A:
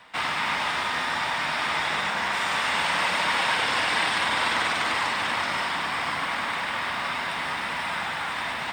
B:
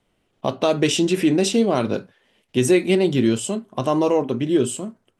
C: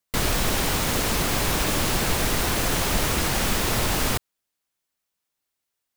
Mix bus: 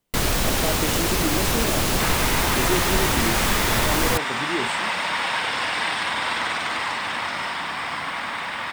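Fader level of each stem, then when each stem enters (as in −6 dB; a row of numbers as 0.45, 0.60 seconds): −0.5, −10.5, +1.5 decibels; 1.85, 0.00, 0.00 seconds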